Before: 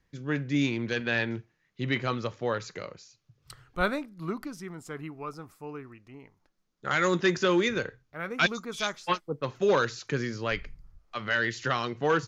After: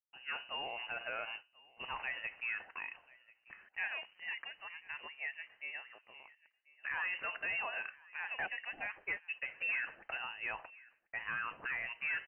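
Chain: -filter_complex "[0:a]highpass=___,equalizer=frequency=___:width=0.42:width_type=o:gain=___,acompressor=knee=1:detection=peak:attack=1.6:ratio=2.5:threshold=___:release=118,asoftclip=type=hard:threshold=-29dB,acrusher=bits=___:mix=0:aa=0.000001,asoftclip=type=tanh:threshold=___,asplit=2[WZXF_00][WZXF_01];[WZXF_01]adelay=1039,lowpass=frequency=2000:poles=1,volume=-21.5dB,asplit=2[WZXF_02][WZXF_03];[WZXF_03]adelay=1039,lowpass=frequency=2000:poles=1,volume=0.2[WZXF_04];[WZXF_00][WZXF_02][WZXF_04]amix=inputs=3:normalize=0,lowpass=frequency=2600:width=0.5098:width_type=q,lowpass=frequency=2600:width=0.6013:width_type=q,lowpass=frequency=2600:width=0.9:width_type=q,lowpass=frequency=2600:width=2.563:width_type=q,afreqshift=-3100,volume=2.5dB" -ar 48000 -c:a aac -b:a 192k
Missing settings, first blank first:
660, 1800, -8, -37dB, 10, -30.5dB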